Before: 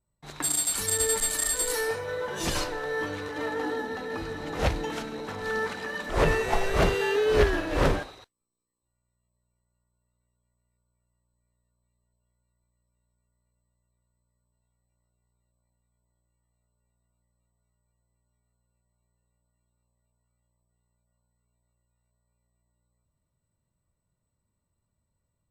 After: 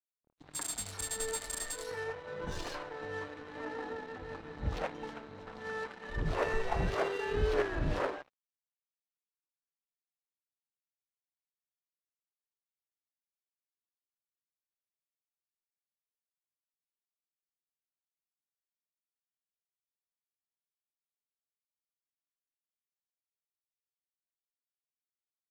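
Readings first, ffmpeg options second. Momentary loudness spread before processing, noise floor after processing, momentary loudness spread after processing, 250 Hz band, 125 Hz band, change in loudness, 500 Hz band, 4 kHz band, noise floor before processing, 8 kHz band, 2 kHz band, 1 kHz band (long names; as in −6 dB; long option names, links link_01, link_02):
10 LU, below −85 dBFS, 12 LU, −9.5 dB, −7.5 dB, −9.5 dB, −9.0 dB, −11.5 dB, −80 dBFS, −12.5 dB, −9.5 dB, −8.0 dB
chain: -filter_complex "[0:a]acrossover=split=310|2800[link_01][link_02][link_03];[link_03]adelay=110[link_04];[link_02]adelay=190[link_05];[link_01][link_05][link_04]amix=inputs=3:normalize=0,aeval=exprs='sgn(val(0))*max(abs(val(0))-0.00841,0)':channel_layout=same,adynamicsmooth=sensitivity=5:basefreq=3000,volume=-6dB"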